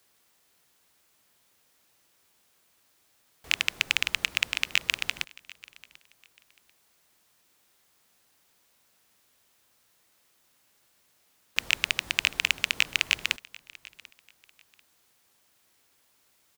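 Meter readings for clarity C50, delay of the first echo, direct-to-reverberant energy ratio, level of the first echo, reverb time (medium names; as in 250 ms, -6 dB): no reverb, 741 ms, no reverb, -22.0 dB, no reverb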